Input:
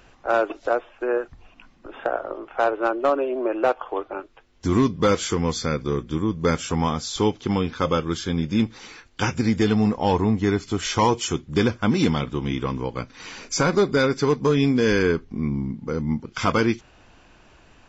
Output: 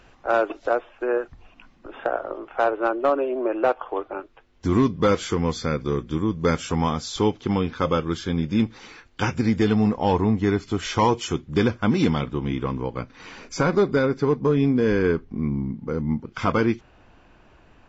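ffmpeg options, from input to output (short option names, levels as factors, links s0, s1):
-af "asetnsamples=n=441:p=0,asendcmd='2.63 lowpass f 3400;5.8 lowpass f 5900;7.19 lowpass f 3600;12.28 lowpass f 2100;13.99 lowpass f 1100;15.04 lowpass f 1900',lowpass=f=6000:p=1"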